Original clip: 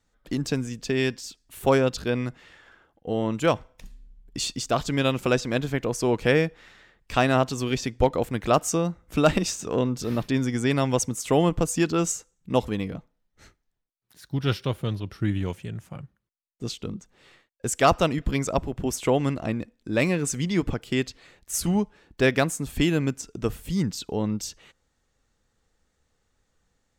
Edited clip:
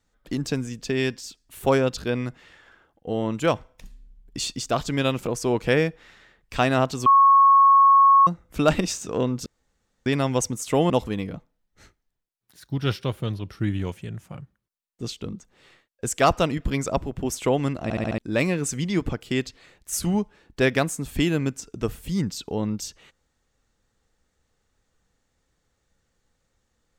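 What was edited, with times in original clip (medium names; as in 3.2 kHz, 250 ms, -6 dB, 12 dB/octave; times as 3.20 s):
5.26–5.84 s: delete
7.64–8.85 s: bleep 1.1 kHz -11 dBFS
10.04–10.64 s: room tone
11.48–12.51 s: delete
19.44 s: stutter in place 0.07 s, 5 plays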